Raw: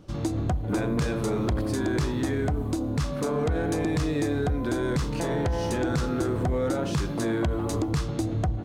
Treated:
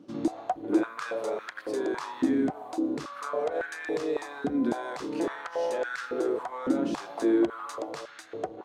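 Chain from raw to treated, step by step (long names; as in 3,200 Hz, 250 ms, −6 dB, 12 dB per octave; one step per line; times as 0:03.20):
high-shelf EQ 8,500 Hz −8.5 dB
high-pass on a step sequencer 3.6 Hz 260–1,600 Hz
level −5.5 dB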